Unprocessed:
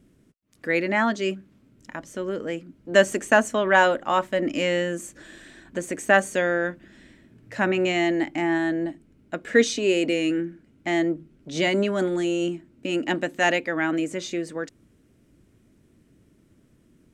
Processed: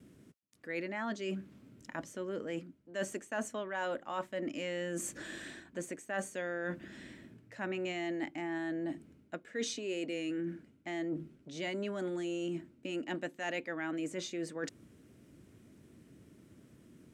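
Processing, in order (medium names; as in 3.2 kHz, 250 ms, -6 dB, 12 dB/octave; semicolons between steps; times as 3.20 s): gate with hold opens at -53 dBFS; reverse; compression 6:1, threshold -37 dBFS, peak gain reduction 24 dB; reverse; high-pass 79 Hz; trim +1 dB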